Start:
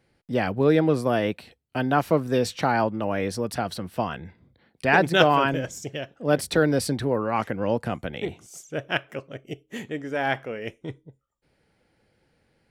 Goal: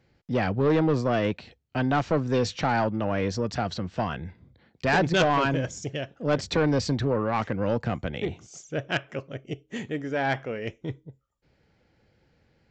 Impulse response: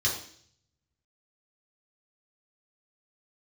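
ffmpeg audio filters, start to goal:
-af "equalizer=frequency=75:width=0.55:gain=5.5,aresample=16000,asoftclip=type=tanh:threshold=-16dB,aresample=44100"

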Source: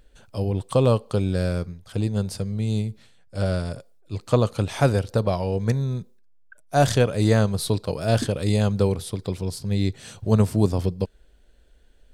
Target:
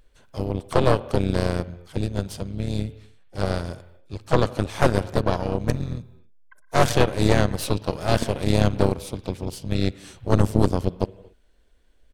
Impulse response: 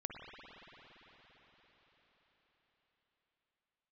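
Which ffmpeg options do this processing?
-filter_complex "[0:a]asplit=4[link_01][link_02][link_03][link_04];[link_02]asetrate=29433,aresample=44100,atempo=1.49831,volume=-7dB[link_05];[link_03]asetrate=55563,aresample=44100,atempo=0.793701,volume=-13dB[link_06];[link_04]asetrate=58866,aresample=44100,atempo=0.749154,volume=-15dB[link_07];[link_01][link_05][link_06][link_07]amix=inputs=4:normalize=0,asplit=2[link_08][link_09];[1:a]atrim=start_sample=2205,afade=type=out:start_time=0.33:duration=0.01,atrim=end_sample=14994,lowshelf=frequency=200:gain=-8.5[link_10];[link_09][link_10]afir=irnorm=-1:irlink=0,volume=-2.5dB[link_11];[link_08][link_11]amix=inputs=2:normalize=0,aeval=exprs='0.891*(cos(1*acos(clip(val(0)/0.891,-1,1)))-cos(1*PI/2))+0.447*(cos(4*acos(clip(val(0)/0.891,-1,1)))-cos(4*PI/2))':channel_layout=same,volume=-7.5dB"

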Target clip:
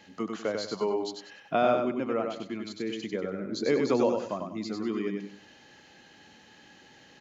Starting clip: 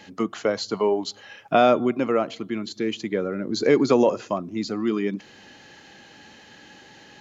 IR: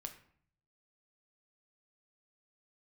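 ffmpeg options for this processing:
-filter_complex "[0:a]asettb=1/sr,asplit=3[link_01][link_02][link_03];[link_01]atrim=end=1.564[link_04];[link_02]atrim=start=1.56:end=2.26,asetpts=PTS-STARTPTS,afade=type=in:duration=0.004:curve=qsin,afade=type=out:start_time=0.696:duration=0.004:curve=qsin,lowpass=frequency=3900:poles=1[link_05];[link_03]atrim=start=2.256[link_06];[link_04][link_05]acrossfade=duration=0.004:curve1=hsin:curve2=qsin[link_07];[link_07][link_06]acrossfade=duration=0.004:curve1=qsin:curve2=hsin,asplit=2[link_08][link_09];[link_09]aecho=0:1:96|192|288|384:0.596|0.185|0.0572|0.0177[link_10];[link_08][link_10]amix=inputs=2:normalize=0,volume=-8dB"

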